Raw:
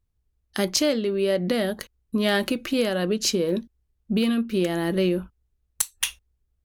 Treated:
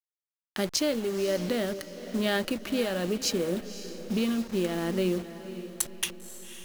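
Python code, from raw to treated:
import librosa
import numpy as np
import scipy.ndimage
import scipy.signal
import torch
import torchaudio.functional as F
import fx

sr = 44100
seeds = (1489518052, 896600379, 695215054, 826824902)

y = fx.delta_hold(x, sr, step_db=-31.5)
y = fx.echo_diffused(y, sr, ms=535, feedback_pct=45, wet_db=-12.5)
y = F.gain(torch.from_numpy(y), -5.0).numpy()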